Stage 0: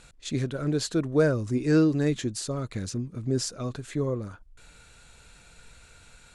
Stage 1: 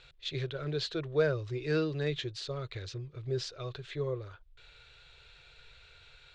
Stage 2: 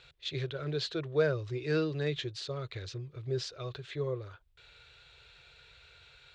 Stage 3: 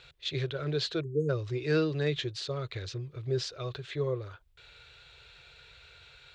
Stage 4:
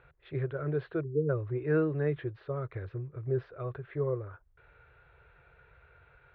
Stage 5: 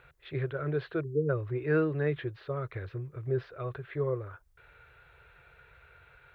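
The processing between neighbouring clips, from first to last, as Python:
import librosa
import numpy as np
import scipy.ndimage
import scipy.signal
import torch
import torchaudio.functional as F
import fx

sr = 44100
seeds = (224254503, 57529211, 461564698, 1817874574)

y1 = fx.curve_eq(x, sr, hz=(150.0, 210.0, 380.0, 850.0, 1900.0, 3700.0, 12000.0), db=(0, -28, 3, -1, 4, 10, -29))
y1 = y1 * librosa.db_to_amplitude(-6.5)
y2 = scipy.signal.sosfilt(scipy.signal.butter(2, 51.0, 'highpass', fs=sr, output='sos'), y1)
y3 = fx.spec_erase(y2, sr, start_s=1.03, length_s=0.26, low_hz=470.0, high_hz=6400.0)
y3 = y3 * librosa.db_to_amplitude(3.0)
y4 = scipy.signal.sosfilt(scipy.signal.butter(4, 1700.0, 'lowpass', fs=sr, output='sos'), y3)
y5 = fx.high_shelf(y4, sr, hz=2200.0, db=11.5)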